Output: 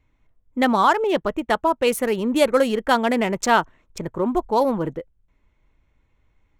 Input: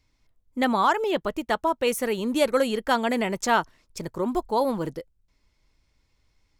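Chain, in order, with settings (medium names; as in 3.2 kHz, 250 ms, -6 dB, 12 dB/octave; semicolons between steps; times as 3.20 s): local Wiener filter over 9 samples; trim +4.5 dB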